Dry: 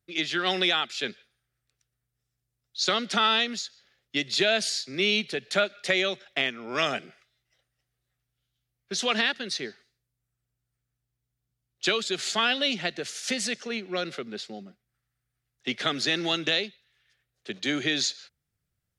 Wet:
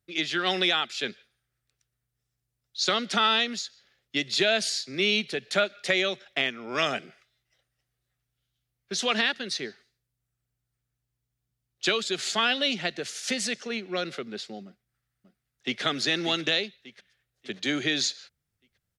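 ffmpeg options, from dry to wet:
ffmpeg -i in.wav -filter_complex "[0:a]asplit=2[link_01][link_02];[link_02]afade=type=in:start_time=14.65:duration=0.01,afade=type=out:start_time=15.82:duration=0.01,aecho=0:1:590|1180|1770|2360|2950:0.281838|0.126827|0.0570723|0.0256825|0.0115571[link_03];[link_01][link_03]amix=inputs=2:normalize=0" out.wav

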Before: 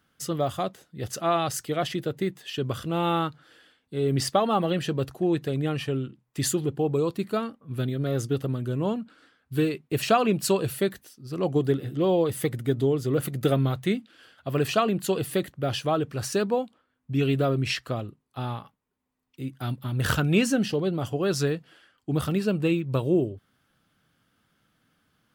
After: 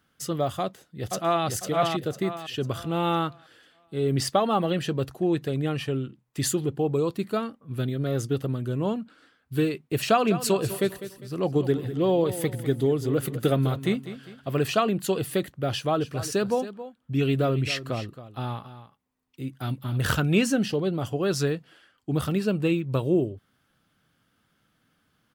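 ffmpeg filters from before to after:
ffmpeg -i in.wav -filter_complex "[0:a]asplit=2[link_01][link_02];[link_02]afade=type=in:start_time=0.61:duration=0.01,afade=type=out:start_time=1.46:duration=0.01,aecho=0:1:500|1000|1500|2000|2500:0.707946|0.247781|0.0867234|0.0303532|0.0106236[link_03];[link_01][link_03]amix=inputs=2:normalize=0,asettb=1/sr,asplit=3[link_04][link_05][link_06];[link_04]atrim=end=10.074[link_07];[link_05]atrim=start=10.07:end=14.65,asetpts=PTS-STARTPTS,afade=type=in:duration=0.004:curve=qsin,afade=type=out:start_time=4.576:duration=0.004:curve=qsin,aecho=1:1:201|402|603|804:0.224|0.0873|0.0341|0.0133,atrim=end_sample=201978[link_08];[link_06]atrim=start=14.646[link_09];[link_07][link_08]acrossfade=duration=0.004:curve1=hsin:curve2=qsin[link_10];[link_10][link_09]acrossfade=duration=0.004:curve1=qsin:curve2=hsin,asplit=3[link_11][link_12][link_13];[link_11]afade=type=out:start_time=16:duration=0.02[link_14];[link_12]aecho=1:1:272:0.211,afade=type=in:start_time=16:duration=0.02,afade=type=out:start_time=20.14:duration=0.02[link_15];[link_13]afade=type=in:start_time=20.14:duration=0.02[link_16];[link_14][link_15][link_16]amix=inputs=3:normalize=0" out.wav

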